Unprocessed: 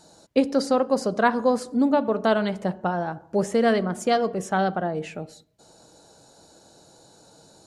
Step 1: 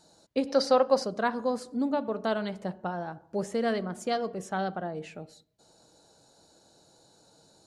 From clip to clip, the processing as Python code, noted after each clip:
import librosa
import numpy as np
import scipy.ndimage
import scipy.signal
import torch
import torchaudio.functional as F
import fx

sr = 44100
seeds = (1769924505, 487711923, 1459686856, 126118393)

y = fx.spec_box(x, sr, start_s=0.47, length_s=0.57, low_hz=480.0, high_hz=6300.0, gain_db=8)
y = fx.peak_eq(y, sr, hz=4200.0, db=3.0, octaves=0.53)
y = y * librosa.db_to_amplitude(-8.0)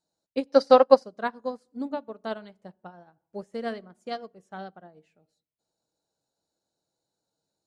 y = fx.upward_expand(x, sr, threshold_db=-39.0, expansion=2.5)
y = y * librosa.db_to_amplitude(8.5)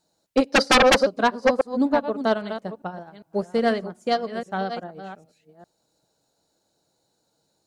y = fx.reverse_delay(x, sr, ms=403, wet_db=-11)
y = fx.fold_sine(y, sr, drive_db=17, ceiling_db=-2.0)
y = y * librosa.db_to_amplitude(-9.0)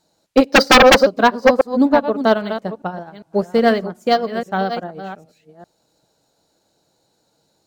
y = np.interp(np.arange(len(x)), np.arange(len(x))[::2], x[::2])
y = y * librosa.db_to_amplitude(7.0)